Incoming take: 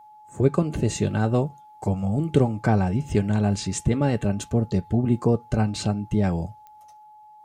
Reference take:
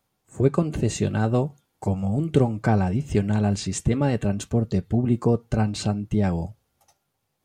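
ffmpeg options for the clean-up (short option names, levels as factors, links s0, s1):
-af "adeclick=t=4,bandreject=f=850:w=30"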